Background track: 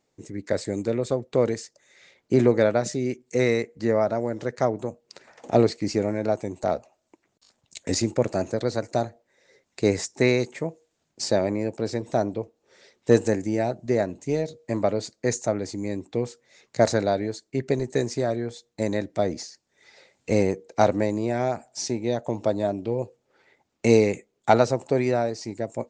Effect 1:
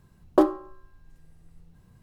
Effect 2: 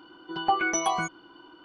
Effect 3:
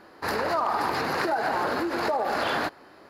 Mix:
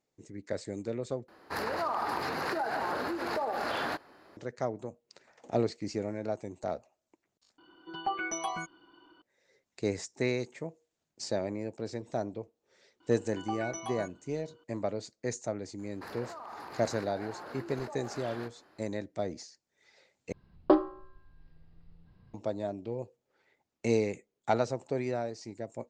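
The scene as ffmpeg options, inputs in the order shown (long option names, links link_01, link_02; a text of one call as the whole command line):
ffmpeg -i bed.wav -i cue0.wav -i cue1.wav -i cue2.wav -filter_complex "[3:a]asplit=2[link_01][link_02];[2:a]asplit=2[link_03][link_04];[0:a]volume=-10dB[link_05];[link_02]acompressor=threshold=-29dB:ratio=6:attack=3.2:release=140:knee=1:detection=peak[link_06];[1:a]aresample=11025,aresample=44100[link_07];[link_05]asplit=4[link_08][link_09][link_10][link_11];[link_08]atrim=end=1.284[link_12];[link_01]atrim=end=3.09,asetpts=PTS-STARTPTS,volume=-6.5dB[link_13];[link_09]atrim=start=4.366:end=7.584[link_14];[link_03]atrim=end=1.64,asetpts=PTS-STARTPTS,volume=-8.5dB[link_15];[link_10]atrim=start=9.216:end=20.324[link_16];[link_07]atrim=end=2.02,asetpts=PTS-STARTPTS,volume=-4dB[link_17];[link_11]atrim=start=22.336[link_18];[link_04]atrim=end=1.64,asetpts=PTS-STARTPTS,volume=-14dB,afade=type=in:duration=0.004:curve=hsin,afade=type=out:start_time=1.636:duration=0.004:curve=hsin,adelay=573300S[link_19];[link_06]atrim=end=3.09,asetpts=PTS-STARTPTS,volume=-11.5dB,afade=type=in:duration=0.004:curve=hsin,afade=type=out:start_time=3.086:duration=0.004:curve=hsin,adelay=15790[link_20];[link_12][link_13]acrossfade=duration=0.004:curve1=hsin:curve2=hsin[link_21];[link_21][link_14]acrossfade=duration=0.004:curve1=hsin:curve2=hsin[link_22];[link_22][link_15]acrossfade=duration=0.004:curve1=hsin:curve2=hsin[link_23];[link_23][link_16]acrossfade=duration=0.004:curve1=hsin:curve2=hsin[link_24];[link_24][link_17]acrossfade=duration=0.004:curve1=hsin:curve2=hsin[link_25];[link_25][link_18]acrossfade=duration=0.004:curve1=hsin:curve2=hsin[link_26];[link_26][link_19][link_20]amix=inputs=3:normalize=0" out.wav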